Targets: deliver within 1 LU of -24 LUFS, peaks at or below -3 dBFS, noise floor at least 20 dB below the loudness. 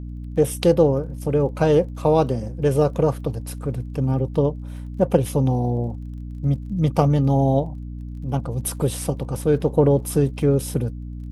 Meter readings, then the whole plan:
tick rate 31 per s; hum 60 Hz; highest harmonic 300 Hz; hum level -30 dBFS; loudness -21.5 LUFS; peak level -2.5 dBFS; loudness target -24.0 LUFS
-> de-click; hum notches 60/120/180/240/300 Hz; trim -2.5 dB

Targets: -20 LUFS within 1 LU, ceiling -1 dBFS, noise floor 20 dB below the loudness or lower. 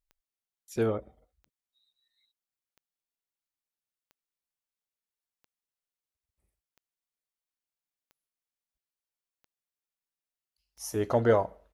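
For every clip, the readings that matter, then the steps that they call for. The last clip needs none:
clicks found 9; loudness -28.5 LUFS; peak level -10.0 dBFS; loudness target -20.0 LUFS
-> de-click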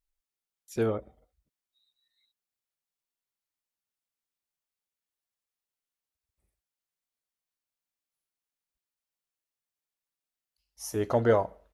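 clicks found 0; loudness -28.5 LUFS; peak level -10.0 dBFS; loudness target -20.0 LUFS
-> trim +8.5 dB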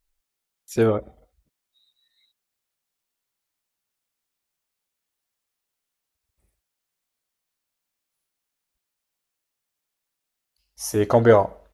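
loudness -20.0 LUFS; peak level -1.5 dBFS; noise floor -83 dBFS

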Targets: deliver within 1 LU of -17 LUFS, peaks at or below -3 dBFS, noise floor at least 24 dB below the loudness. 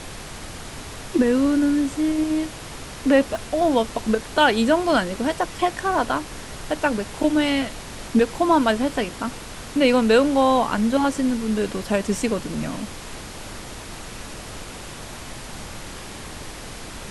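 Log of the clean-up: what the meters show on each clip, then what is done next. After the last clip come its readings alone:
dropouts 2; longest dropout 1.1 ms; noise floor -37 dBFS; noise floor target -46 dBFS; loudness -21.5 LUFS; peak level -5.0 dBFS; loudness target -17.0 LUFS
-> interpolate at 3.35/12.18 s, 1.1 ms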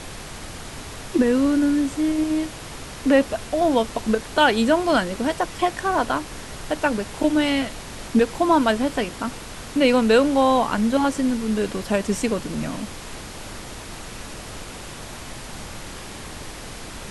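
dropouts 0; noise floor -37 dBFS; noise floor target -46 dBFS
-> noise print and reduce 9 dB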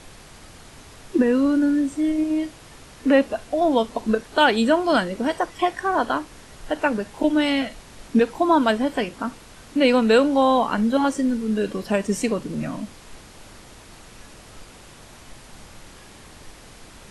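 noise floor -46 dBFS; loudness -21.5 LUFS; peak level -5.0 dBFS; loudness target -17.0 LUFS
-> trim +4.5 dB; peak limiter -3 dBFS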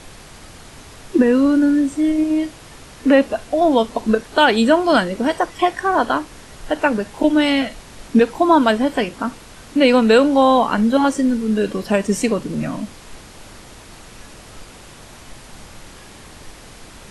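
loudness -17.0 LUFS; peak level -3.0 dBFS; noise floor -41 dBFS

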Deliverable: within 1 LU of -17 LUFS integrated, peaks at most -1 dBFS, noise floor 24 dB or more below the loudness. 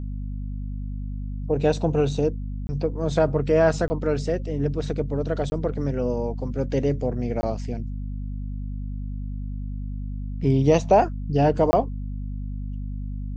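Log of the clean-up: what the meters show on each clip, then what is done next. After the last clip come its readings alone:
dropouts 5; longest dropout 20 ms; hum 50 Hz; highest harmonic 250 Hz; hum level -28 dBFS; loudness -25.5 LUFS; peak level -5.5 dBFS; loudness target -17.0 LUFS
-> interpolate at 2.67/3.88/5.50/7.41/11.71 s, 20 ms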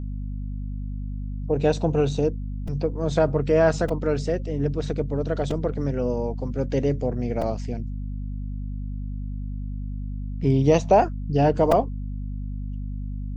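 dropouts 0; hum 50 Hz; highest harmonic 250 Hz; hum level -28 dBFS
-> de-hum 50 Hz, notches 5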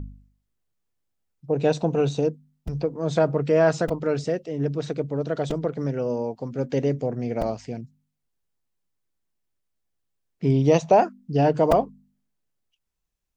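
hum not found; loudness -24.0 LUFS; peak level -5.0 dBFS; loudness target -17.0 LUFS
-> trim +7 dB; peak limiter -1 dBFS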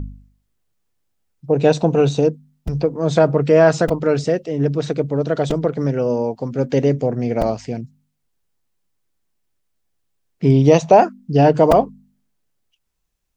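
loudness -17.0 LUFS; peak level -1.0 dBFS; noise floor -71 dBFS

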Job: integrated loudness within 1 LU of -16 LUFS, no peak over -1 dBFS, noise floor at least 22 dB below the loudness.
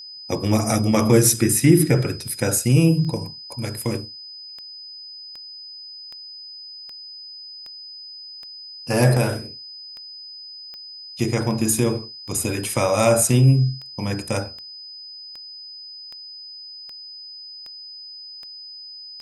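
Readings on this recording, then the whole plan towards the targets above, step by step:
clicks found 25; steady tone 5 kHz; tone level -36 dBFS; loudness -20.0 LUFS; peak level -2.0 dBFS; loudness target -16.0 LUFS
-> de-click; band-stop 5 kHz, Q 30; trim +4 dB; peak limiter -1 dBFS

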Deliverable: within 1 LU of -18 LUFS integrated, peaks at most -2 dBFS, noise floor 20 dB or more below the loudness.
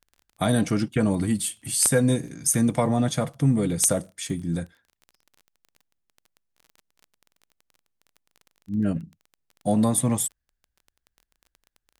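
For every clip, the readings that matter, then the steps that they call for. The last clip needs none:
tick rate 21 per s; loudness -24.0 LUFS; peak level -6.0 dBFS; loudness target -18.0 LUFS
-> de-click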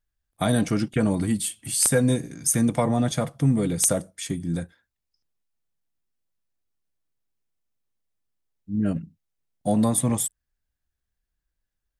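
tick rate 0 per s; loudness -24.0 LUFS; peak level -6.0 dBFS; loudness target -18.0 LUFS
-> trim +6 dB; peak limiter -2 dBFS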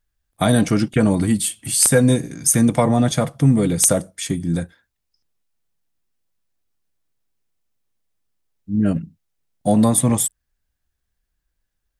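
loudness -18.0 LUFS; peak level -2.0 dBFS; noise floor -76 dBFS

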